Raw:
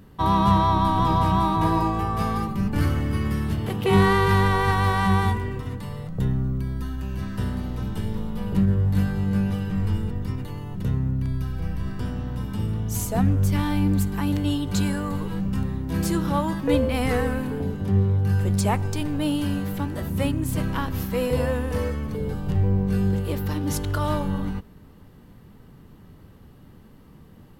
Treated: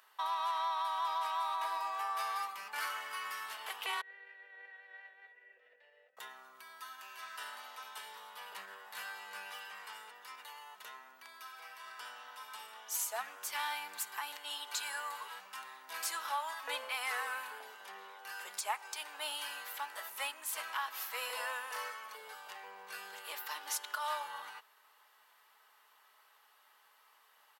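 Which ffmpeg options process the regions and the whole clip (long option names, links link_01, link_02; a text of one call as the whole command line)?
ffmpeg -i in.wav -filter_complex "[0:a]asettb=1/sr,asplit=3[link_01][link_02][link_03];[link_01]atrim=end=4.014[link_04];[link_02]atrim=start=4.01:end=6.17,asetpts=PTS-STARTPTS,afade=type=in:duration=0.004:curve=qsin,afade=type=out:start_time=2.156:duration=0.004:curve=qsin,aemphasis=mode=reproduction:type=riaa,acompressor=threshold=-15dB:ratio=16:attack=3.2:release=140:knee=1:detection=peak,asplit=3[link_05][link_06][link_07];[link_05]bandpass=frequency=530:width_type=q:width=8,volume=0dB[link_08];[link_06]bandpass=frequency=1840:width_type=q:width=8,volume=-6dB[link_09];[link_07]bandpass=frequency=2480:width_type=q:width=8,volume=-9dB[link_10];[link_08][link_09][link_10]amix=inputs=3:normalize=0[link_11];[link_03]atrim=start=6.166[link_12];[link_04][link_11]acrossfade=duration=0.004:curve1=hsin:curve2=qsin[link_13];[link_13][link_12]acrossfade=duration=0.004:curve1=qsin:curve2=hsin,highpass=frequency=880:width=0.5412,highpass=frequency=880:width=1.3066,alimiter=limit=-23dB:level=0:latency=1:release=233,aecho=1:1:4.7:0.32,volume=-3dB" out.wav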